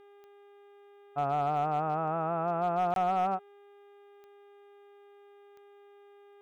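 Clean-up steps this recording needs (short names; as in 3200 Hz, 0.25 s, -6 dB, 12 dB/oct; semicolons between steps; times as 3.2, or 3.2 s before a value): clip repair -21.5 dBFS; de-click; de-hum 404.8 Hz, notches 9; interpolate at 2.94, 22 ms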